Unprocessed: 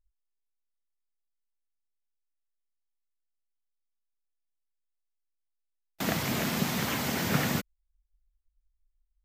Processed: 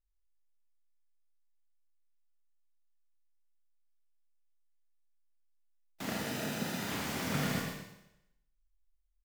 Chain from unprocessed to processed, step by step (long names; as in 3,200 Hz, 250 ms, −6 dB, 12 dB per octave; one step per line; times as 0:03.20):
phase distortion by the signal itself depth 0.14 ms
0:06.11–0:06.89: notch comb filter 1,100 Hz
single-tap delay 124 ms −7 dB
four-comb reverb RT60 0.85 s, combs from 27 ms, DRR 0 dB
level −8.5 dB